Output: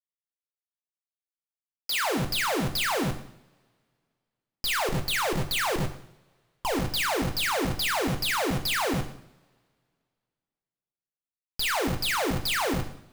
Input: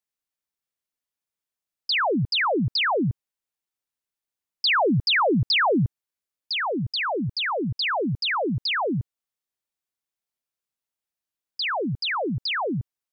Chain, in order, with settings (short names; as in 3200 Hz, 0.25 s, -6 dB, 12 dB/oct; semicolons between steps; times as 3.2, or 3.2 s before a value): bell 86 Hz +7.5 dB 0.29 oct; notches 50/100/150/200/250/300 Hz; 4.88–6.65 level quantiser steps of 21 dB; Schmitt trigger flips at -26 dBFS; two-slope reverb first 0.63 s, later 2.3 s, from -27 dB, DRR 5 dB